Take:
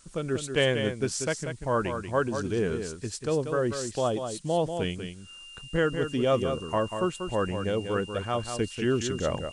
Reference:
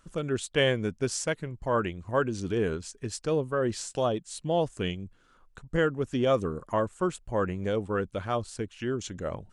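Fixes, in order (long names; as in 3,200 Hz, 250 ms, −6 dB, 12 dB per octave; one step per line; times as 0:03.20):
notch filter 2,800 Hz, Q 30
noise reduction from a noise print 14 dB
echo removal 189 ms −7.5 dB
level correction −5 dB, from 0:08.43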